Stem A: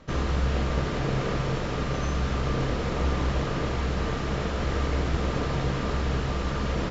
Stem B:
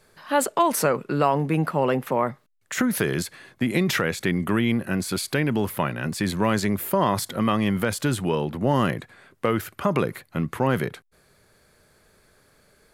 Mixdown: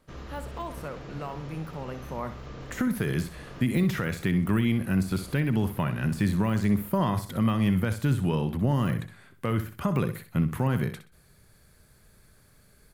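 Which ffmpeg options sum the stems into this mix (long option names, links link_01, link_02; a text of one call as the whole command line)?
ffmpeg -i stem1.wav -i stem2.wav -filter_complex "[0:a]volume=-14.5dB[link_01];[1:a]highshelf=frequency=10000:gain=10.5,deesser=0.65,asubboost=boost=3:cutoff=220,volume=-4dB,afade=type=in:start_time=2.01:duration=0.74:silence=0.237137,asplit=3[link_02][link_03][link_04];[link_03]volume=-11dB[link_05];[link_04]apad=whole_len=304529[link_06];[link_01][link_06]sidechaincompress=threshold=-30dB:ratio=8:attack=16:release=463[link_07];[link_05]aecho=0:1:63|126|189|252:1|0.28|0.0784|0.022[link_08];[link_07][link_02][link_08]amix=inputs=3:normalize=0,alimiter=limit=-14.5dB:level=0:latency=1:release=224" out.wav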